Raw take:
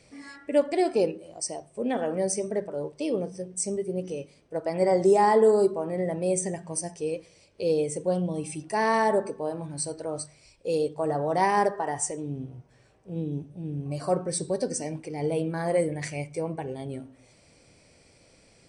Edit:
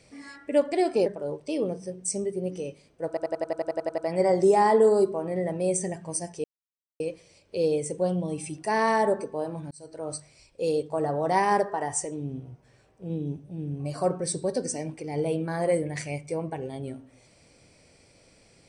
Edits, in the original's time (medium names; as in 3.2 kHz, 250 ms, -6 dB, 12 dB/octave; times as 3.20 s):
1.06–2.58 s: delete
4.60 s: stutter 0.09 s, 11 plays
7.06 s: insert silence 0.56 s
9.77–10.20 s: fade in